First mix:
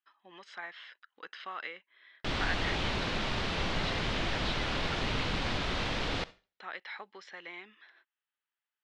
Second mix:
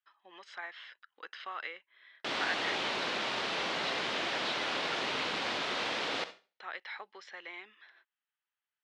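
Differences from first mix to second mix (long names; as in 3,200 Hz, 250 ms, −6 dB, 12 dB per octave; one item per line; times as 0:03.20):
background: send +7.5 dB
master: add high-pass filter 360 Hz 12 dB per octave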